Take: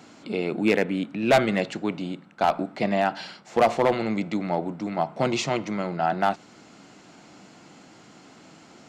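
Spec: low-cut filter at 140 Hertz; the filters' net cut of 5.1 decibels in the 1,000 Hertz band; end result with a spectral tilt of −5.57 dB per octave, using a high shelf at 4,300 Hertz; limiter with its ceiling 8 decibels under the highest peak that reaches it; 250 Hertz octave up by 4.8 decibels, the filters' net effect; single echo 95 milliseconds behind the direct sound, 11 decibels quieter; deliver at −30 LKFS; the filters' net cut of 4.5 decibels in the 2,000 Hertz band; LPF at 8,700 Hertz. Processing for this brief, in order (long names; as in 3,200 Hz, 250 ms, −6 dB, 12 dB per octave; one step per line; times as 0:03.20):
high-pass filter 140 Hz
low-pass filter 8,700 Hz
parametric band 250 Hz +7.5 dB
parametric band 1,000 Hz −8.5 dB
parametric band 2,000 Hz −4.5 dB
high-shelf EQ 4,300 Hz +5 dB
brickwall limiter −15.5 dBFS
single-tap delay 95 ms −11 dB
level −4 dB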